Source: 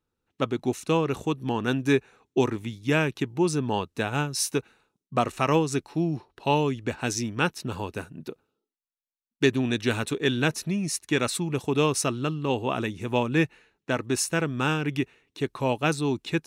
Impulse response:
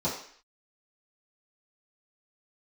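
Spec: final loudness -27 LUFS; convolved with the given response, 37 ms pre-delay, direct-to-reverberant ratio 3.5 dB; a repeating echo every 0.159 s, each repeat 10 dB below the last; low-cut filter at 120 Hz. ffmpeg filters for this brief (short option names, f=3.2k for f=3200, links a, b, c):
-filter_complex "[0:a]highpass=120,aecho=1:1:159|318|477|636:0.316|0.101|0.0324|0.0104,asplit=2[a][b];[1:a]atrim=start_sample=2205,adelay=37[c];[b][c]afir=irnorm=-1:irlink=0,volume=-12.5dB[d];[a][d]amix=inputs=2:normalize=0,volume=-3.5dB"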